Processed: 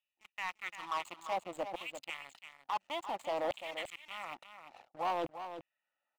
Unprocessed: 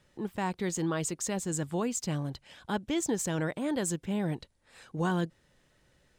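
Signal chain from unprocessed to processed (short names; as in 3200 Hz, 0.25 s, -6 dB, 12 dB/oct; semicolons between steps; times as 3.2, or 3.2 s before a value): Wiener smoothing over 41 samples; HPF 290 Hz 12 dB/oct; reverse; compressor 10:1, threshold -44 dBFS, peak gain reduction 17.5 dB; reverse; LFO high-pass saw down 0.57 Hz 470–2900 Hz; air absorption 220 m; fixed phaser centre 1600 Hz, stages 6; sample leveller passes 3; on a send: echo 0.344 s -10 dB; on the sum: gain +10 dB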